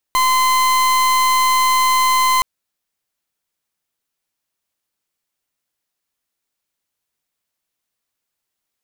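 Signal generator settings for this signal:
pulse wave 1,030 Hz, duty 39% −14.5 dBFS 2.27 s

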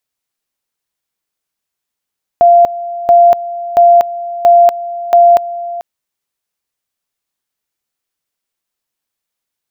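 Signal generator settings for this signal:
tone at two levels in turn 692 Hz −2.5 dBFS, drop 16 dB, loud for 0.24 s, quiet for 0.44 s, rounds 5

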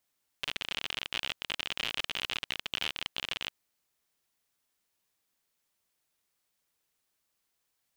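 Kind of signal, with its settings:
Geiger counter clicks 56 per second −16.5 dBFS 3.07 s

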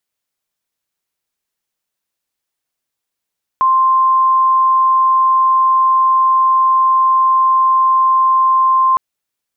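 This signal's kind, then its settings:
tone sine 1,050 Hz −8.5 dBFS 5.36 s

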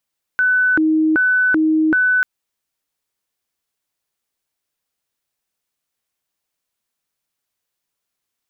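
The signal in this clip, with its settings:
siren hi-lo 314–1,500 Hz 1.3 per second sine −12 dBFS 1.84 s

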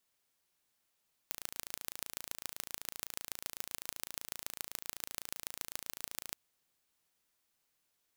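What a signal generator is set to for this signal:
impulse train 27.9 per second, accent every 4, −9.5 dBFS 5.02 s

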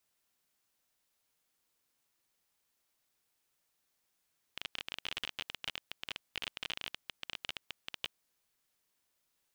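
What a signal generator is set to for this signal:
Geiger counter clicks 24 per second −21 dBFS 3.64 s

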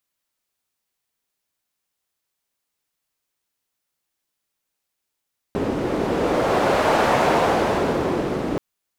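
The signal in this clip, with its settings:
wind from filtered noise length 3.03 s, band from 330 Hz, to 700 Hz, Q 1.2, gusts 1, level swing 6 dB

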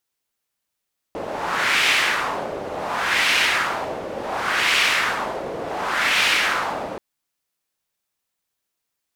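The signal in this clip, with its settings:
wind from filtered noise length 5.83 s, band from 520 Hz, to 2,500 Hz, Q 1.8, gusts 4, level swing 12 dB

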